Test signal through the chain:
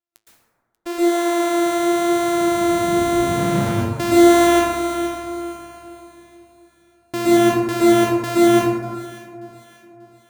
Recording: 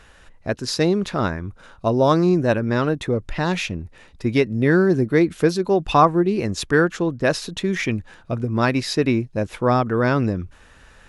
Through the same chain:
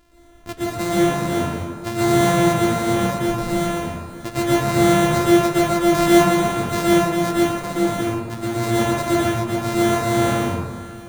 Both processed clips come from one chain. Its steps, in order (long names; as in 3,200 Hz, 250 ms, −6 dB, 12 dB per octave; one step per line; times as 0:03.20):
samples sorted by size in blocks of 128 samples
flanger 0.93 Hz, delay 6.3 ms, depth 7.2 ms, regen +75%
delay that swaps between a low-pass and a high-pass 294 ms, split 1,100 Hz, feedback 64%, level −14 dB
dense smooth reverb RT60 1.4 s, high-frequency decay 0.4×, pre-delay 105 ms, DRR −7.5 dB
level −4 dB